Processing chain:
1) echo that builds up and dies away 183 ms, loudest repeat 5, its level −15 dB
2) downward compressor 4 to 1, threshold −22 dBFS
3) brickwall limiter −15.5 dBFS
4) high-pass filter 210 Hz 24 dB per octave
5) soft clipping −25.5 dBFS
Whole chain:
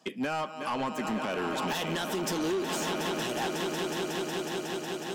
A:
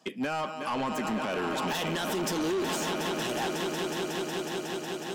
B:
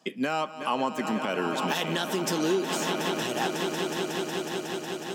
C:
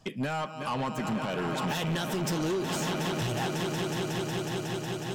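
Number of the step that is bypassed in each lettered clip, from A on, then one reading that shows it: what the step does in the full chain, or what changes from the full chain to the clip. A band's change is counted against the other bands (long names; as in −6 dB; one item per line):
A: 2, average gain reduction 3.0 dB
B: 5, distortion level −12 dB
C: 4, 125 Hz band +9.5 dB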